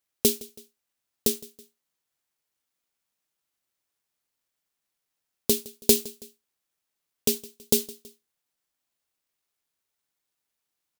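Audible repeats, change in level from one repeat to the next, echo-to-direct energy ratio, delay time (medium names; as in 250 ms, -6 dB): 2, -6.0 dB, -20.0 dB, 163 ms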